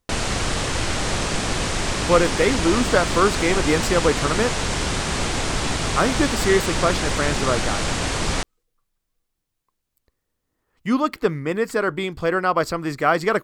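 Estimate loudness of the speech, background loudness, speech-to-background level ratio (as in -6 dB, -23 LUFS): -22.0 LUFS, -23.5 LUFS, 1.5 dB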